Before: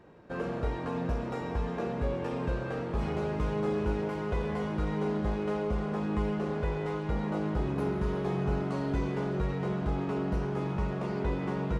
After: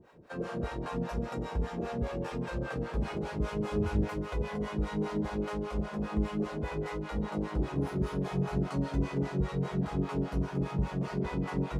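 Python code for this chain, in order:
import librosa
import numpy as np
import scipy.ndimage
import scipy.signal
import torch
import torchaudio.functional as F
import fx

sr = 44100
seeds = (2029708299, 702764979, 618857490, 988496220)

y = fx.high_shelf(x, sr, hz=5100.0, db=8.0)
y = fx.echo_multitap(y, sr, ms=(86, 282), db=(-7.5, -10.0))
y = fx.harmonic_tremolo(y, sr, hz=5.0, depth_pct=100, crossover_hz=570.0)
y = fx.peak_eq(y, sr, hz=79.0, db=13.5, octaves=1.2, at=(3.71, 4.14))
y = F.gain(torch.from_numpy(y), 1.5).numpy()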